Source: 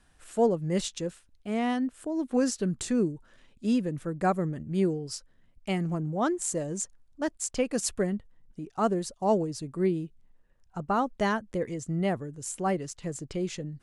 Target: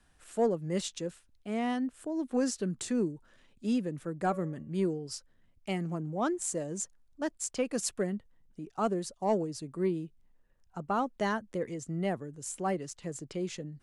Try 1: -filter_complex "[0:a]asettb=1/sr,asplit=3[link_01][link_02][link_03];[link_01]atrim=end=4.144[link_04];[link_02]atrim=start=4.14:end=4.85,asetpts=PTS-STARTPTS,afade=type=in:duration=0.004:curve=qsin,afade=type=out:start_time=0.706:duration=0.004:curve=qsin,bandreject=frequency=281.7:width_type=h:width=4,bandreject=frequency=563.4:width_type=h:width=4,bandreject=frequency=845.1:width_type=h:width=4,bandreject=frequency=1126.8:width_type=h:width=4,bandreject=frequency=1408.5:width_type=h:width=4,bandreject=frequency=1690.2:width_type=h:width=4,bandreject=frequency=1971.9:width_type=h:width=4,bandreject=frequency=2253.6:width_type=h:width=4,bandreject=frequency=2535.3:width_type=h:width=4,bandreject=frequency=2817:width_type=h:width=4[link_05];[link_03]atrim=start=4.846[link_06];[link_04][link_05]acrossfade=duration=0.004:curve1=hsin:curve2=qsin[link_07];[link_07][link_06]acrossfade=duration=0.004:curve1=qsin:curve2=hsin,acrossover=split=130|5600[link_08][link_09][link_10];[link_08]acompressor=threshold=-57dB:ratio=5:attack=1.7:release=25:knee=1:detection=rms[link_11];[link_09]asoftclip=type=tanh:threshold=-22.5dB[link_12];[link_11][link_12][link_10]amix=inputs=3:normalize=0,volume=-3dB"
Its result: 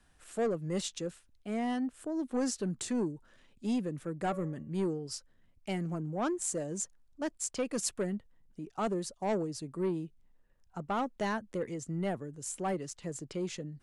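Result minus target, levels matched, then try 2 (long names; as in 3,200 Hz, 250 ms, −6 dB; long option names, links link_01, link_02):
soft clipping: distortion +13 dB
-filter_complex "[0:a]asettb=1/sr,asplit=3[link_01][link_02][link_03];[link_01]atrim=end=4.144[link_04];[link_02]atrim=start=4.14:end=4.85,asetpts=PTS-STARTPTS,afade=type=in:duration=0.004:curve=qsin,afade=type=out:start_time=0.706:duration=0.004:curve=qsin,bandreject=frequency=281.7:width_type=h:width=4,bandreject=frequency=563.4:width_type=h:width=4,bandreject=frequency=845.1:width_type=h:width=4,bandreject=frequency=1126.8:width_type=h:width=4,bandreject=frequency=1408.5:width_type=h:width=4,bandreject=frequency=1690.2:width_type=h:width=4,bandreject=frequency=1971.9:width_type=h:width=4,bandreject=frequency=2253.6:width_type=h:width=4,bandreject=frequency=2535.3:width_type=h:width=4,bandreject=frequency=2817:width_type=h:width=4[link_05];[link_03]atrim=start=4.846[link_06];[link_04][link_05]acrossfade=duration=0.004:curve1=hsin:curve2=qsin[link_07];[link_07][link_06]acrossfade=duration=0.004:curve1=qsin:curve2=hsin,acrossover=split=130|5600[link_08][link_09][link_10];[link_08]acompressor=threshold=-57dB:ratio=5:attack=1.7:release=25:knee=1:detection=rms[link_11];[link_09]asoftclip=type=tanh:threshold=-13dB[link_12];[link_11][link_12][link_10]amix=inputs=3:normalize=0,volume=-3dB"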